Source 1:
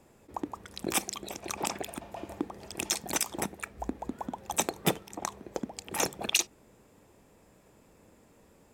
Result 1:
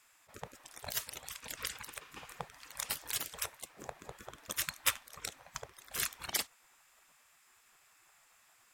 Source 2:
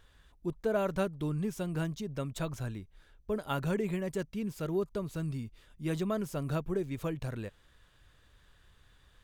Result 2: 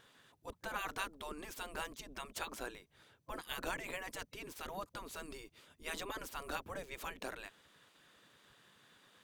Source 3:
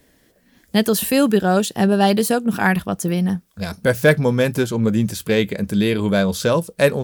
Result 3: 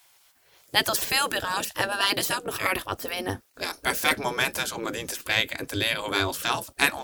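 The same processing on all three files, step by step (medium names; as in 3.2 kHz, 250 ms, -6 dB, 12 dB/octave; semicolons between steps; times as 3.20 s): spectral gate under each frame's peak -15 dB weak; trim +3 dB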